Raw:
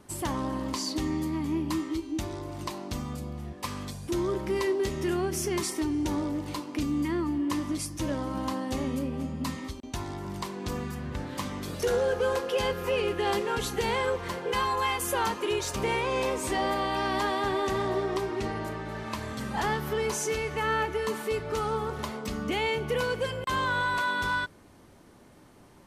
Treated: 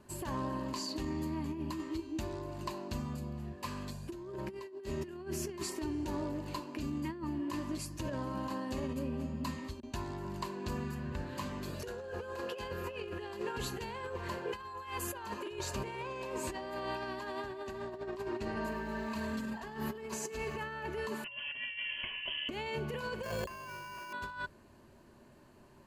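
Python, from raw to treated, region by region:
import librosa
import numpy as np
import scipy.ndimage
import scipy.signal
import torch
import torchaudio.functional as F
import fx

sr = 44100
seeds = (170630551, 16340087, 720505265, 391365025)

y = fx.chain(x, sr, fx.comb(ms=4.4, depth=0.69),
    fx.echo_crushed(ms=105, feedback_pct=35, bits=8, wet_db=-13.5), at=(18.56, 20.58))
y = fx.chain(y, sr, fx.notch(hz=1900.0, q=7.8),
    fx.freq_invert(carrier_hz=3200), at=(21.24, 22.49))
y = fx.chain(y, sr, fx.hum_notches(base_hz=60, count=10),
    fx.sample_hold(seeds[0], rate_hz=3800.0, jitter_pct=0),
    fx.env_flatten(amount_pct=70), at=(23.23, 24.13))
y = fx.ripple_eq(y, sr, per_octave=1.4, db=7)
y = fx.over_compress(y, sr, threshold_db=-30.0, ratio=-0.5)
y = fx.high_shelf(y, sr, hz=4800.0, db=-5.0)
y = y * librosa.db_to_amplitude(-7.5)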